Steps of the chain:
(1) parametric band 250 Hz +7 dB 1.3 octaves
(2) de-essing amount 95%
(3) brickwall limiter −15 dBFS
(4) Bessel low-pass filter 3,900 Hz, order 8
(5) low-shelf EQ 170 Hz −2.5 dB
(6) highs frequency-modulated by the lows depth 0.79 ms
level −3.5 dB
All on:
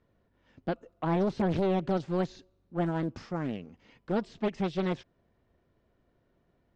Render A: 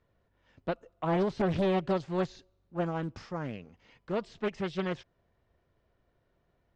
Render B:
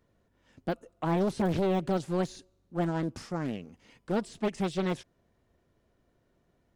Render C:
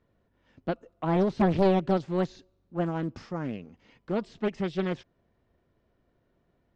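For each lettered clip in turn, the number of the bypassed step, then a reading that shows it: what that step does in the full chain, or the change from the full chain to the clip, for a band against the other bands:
1, 250 Hz band −2.5 dB
4, 4 kHz band +2.5 dB
3, change in crest factor +3.5 dB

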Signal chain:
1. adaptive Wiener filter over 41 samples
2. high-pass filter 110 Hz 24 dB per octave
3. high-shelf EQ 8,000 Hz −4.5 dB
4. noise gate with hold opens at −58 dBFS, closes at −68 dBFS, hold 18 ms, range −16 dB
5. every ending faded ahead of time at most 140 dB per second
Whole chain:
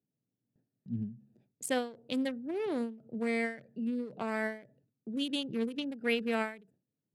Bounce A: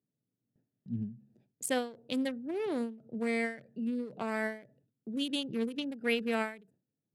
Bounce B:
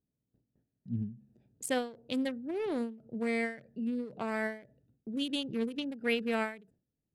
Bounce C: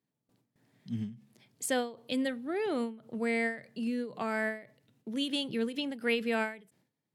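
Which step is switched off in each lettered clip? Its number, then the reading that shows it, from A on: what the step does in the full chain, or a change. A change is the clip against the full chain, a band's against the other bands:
3, 8 kHz band +2.5 dB
2, 125 Hz band +2.0 dB
1, 8 kHz band +2.0 dB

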